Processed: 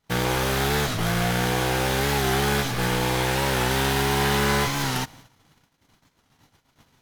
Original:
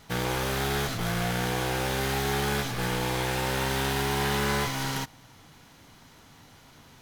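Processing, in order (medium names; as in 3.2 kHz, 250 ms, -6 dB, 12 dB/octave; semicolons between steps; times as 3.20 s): gate -50 dBFS, range -27 dB; warped record 45 rpm, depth 100 cents; trim +5 dB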